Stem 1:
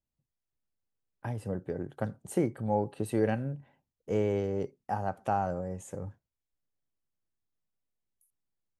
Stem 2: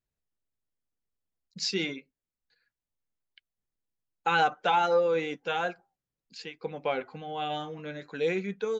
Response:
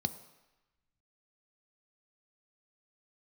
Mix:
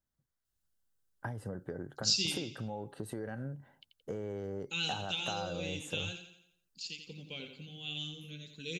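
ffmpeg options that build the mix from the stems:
-filter_complex "[0:a]equalizer=frequency=2500:width_type=o:width=0.26:gain=-11.5,alimiter=limit=-23.5dB:level=0:latency=1:release=87,acompressor=threshold=-37dB:ratio=6,volume=0.5dB[link_01];[1:a]firequalizer=gain_entry='entry(110,0);entry(720,-29);entry(1700,-27);entry(2700,1);entry(8300,8)':delay=0.05:min_phase=1,adelay=450,volume=-1.5dB,asplit=2[link_02][link_03];[link_03]volume=-8dB,aecho=0:1:86|172|258|344|430|516:1|0.46|0.212|0.0973|0.0448|0.0206[link_04];[link_01][link_02][link_04]amix=inputs=3:normalize=0,equalizer=frequency=1500:width_type=o:width=0.54:gain=7"

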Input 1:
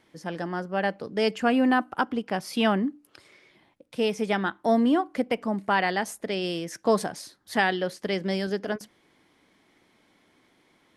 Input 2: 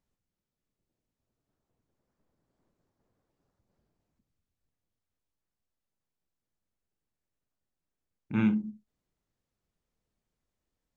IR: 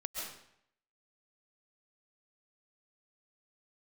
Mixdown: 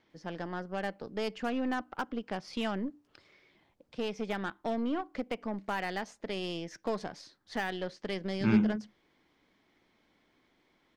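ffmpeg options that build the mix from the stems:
-filter_complex "[0:a]lowpass=frequency=5900:width=0.5412,lowpass=frequency=5900:width=1.3066,acompressor=threshold=-25dB:ratio=2,aeval=exprs='0.158*(cos(1*acos(clip(val(0)/0.158,-1,1)))-cos(1*PI/2))+0.0112*(cos(6*acos(clip(val(0)/0.158,-1,1)))-cos(6*PI/2))':channel_layout=same,volume=-7dB[link_01];[1:a]adelay=100,volume=0.5dB[link_02];[link_01][link_02]amix=inputs=2:normalize=0"

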